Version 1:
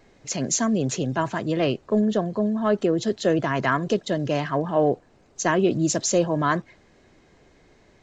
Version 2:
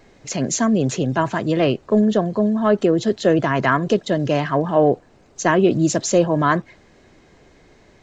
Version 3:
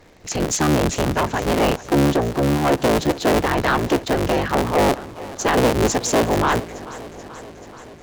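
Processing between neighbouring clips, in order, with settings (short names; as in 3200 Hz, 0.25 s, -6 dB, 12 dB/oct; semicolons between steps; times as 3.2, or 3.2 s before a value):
dynamic EQ 6000 Hz, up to -5 dB, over -40 dBFS, Q 0.81; gain +5 dB
cycle switcher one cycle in 3, inverted; sine folder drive 5 dB, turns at -3 dBFS; warbling echo 0.432 s, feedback 69%, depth 52 cents, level -17.5 dB; gain -8 dB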